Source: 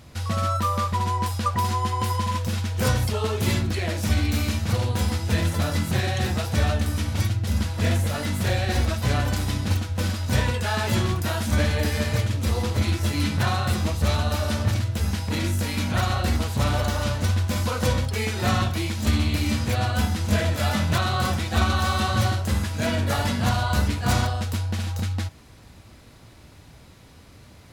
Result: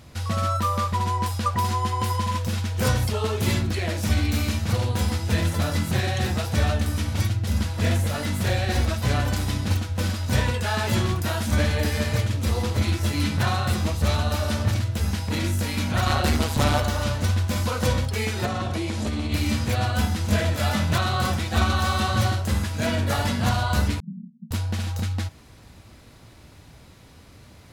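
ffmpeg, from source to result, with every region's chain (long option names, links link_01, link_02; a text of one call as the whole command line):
ffmpeg -i in.wav -filter_complex "[0:a]asettb=1/sr,asplit=3[link_01][link_02][link_03];[link_01]atrim=end=16.064[link_04];[link_02]atrim=start=16.06:end=16.8,asetpts=PTS-STARTPTS,afade=type=in:duration=0.004:curve=qsin,afade=type=out:start_time=0.736:duration=0.004:curve=qsin,lowshelf=frequency=140:gain=-5,acontrast=81,tremolo=f=150:d=0.621[link_05];[link_03]atrim=start=16.796[link_06];[link_04][link_05]acrossfade=duration=0.004:curve1=hsin:curve2=qsin[link_07];[link_07][link_06]acrossfade=duration=0.004:curve1=qsin:curve2=hsin,asettb=1/sr,asplit=3[link_08][link_09][link_10];[link_08]atrim=end=18.454[link_11];[link_09]atrim=start=18.45:end=19.32,asetpts=PTS-STARTPTS,afade=type=in:duration=0.004:curve=qsin,afade=type=out:start_time=0.866:duration=0.004:curve=qsin,lowpass=frequency=11000:width=0.5412,lowpass=frequency=11000:width=1.3066,equalizer=frequency=480:width_type=o:width=1.9:gain=8,acompressor=threshold=-22dB:ratio=12:attack=3.2:release=140:knee=1:detection=peak[link_12];[link_10]atrim=start=19.316[link_13];[link_11][link_12]acrossfade=duration=0.004:curve1=hsin:curve2=qsin[link_14];[link_14][link_13]acrossfade=duration=0.004:curve1=qsin:curve2=hsin,asettb=1/sr,asplit=3[link_15][link_16][link_17];[link_15]atrim=end=24.004[link_18];[link_16]atrim=start=24:end=24.51,asetpts=PTS-STARTPTS,afade=type=in:duration=0.004:curve=qsin,afade=type=out:start_time=0.506:duration=0.004:curve=qsin,asuperpass=centerf=190:order=12:qfactor=2.7,aecho=1:1:7.2:0.72,atrim=end_sample=22491[link_19];[link_17]atrim=start=24.506[link_20];[link_18][link_19]acrossfade=duration=0.004:curve1=hsin:curve2=qsin[link_21];[link_21][link_20]acrossfade=duration=0.004:curve1=qsin:curve2=hsin" out.wav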